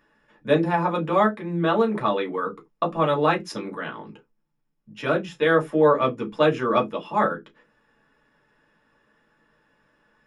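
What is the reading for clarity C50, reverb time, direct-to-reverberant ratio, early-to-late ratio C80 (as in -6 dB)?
20.0 dB, not exponential, -0.5 dB, 31.5 dB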